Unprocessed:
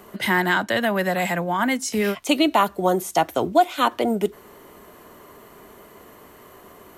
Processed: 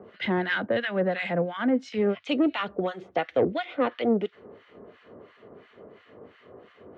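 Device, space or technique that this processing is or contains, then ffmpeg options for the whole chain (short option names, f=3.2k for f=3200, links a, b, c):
guitar amplifier with harmonic tremolo: -filter_complex "[0:a]acrossover=split=1200[a][b];[a]aeval=exprs='val(0)*(1-1/2+1/2*cos(2*PI*2.9*n/s))':c=same[c];[b]aeval=exprs='val(0)*(1-1/2-1/2*cos(2*PI*2.9*n/s))':c=same[d];[c][d]amix=inputs=2:normalize=0,asoftclip=type=tanh:threshold=-17.5dB,highpass=90,equalizer=f=100:t=q:w=4:g=6,equalizer=f=250:t=q:w=4:g=3,equalizer=f=490:t=q:w=4:g=8,equalizer=f=980:t=q:w=4:g=-8,lowpass=f=3.5k:w=0.5412,lowpass=f=3.5k:w=1.3066,asettb=1/sr,asplit=3[e][f][g];[e]atrim=end=3.154[h];[f]atrim=start=3.15:end=3.99,asetpts=PTS-STARTPTS,afade=t=in:d=0.004:c=qsin,afade=t=out:st=0.836:d=0.004:c=qsin,equalizer=f=500:t=o:w=0.33:g=4,equalizer=f=2k:t=o:w=0.33:g=6,equalizer=f=8k:t=o:w=0.33:g=-6[i];[g]atrim=start=3.986[j];[h][i]acrossfade=d=0.004:c1=hsin:c2=qsin[k];[k][j]acrossfade=d=0.004:c1=qsin:c2=hsin"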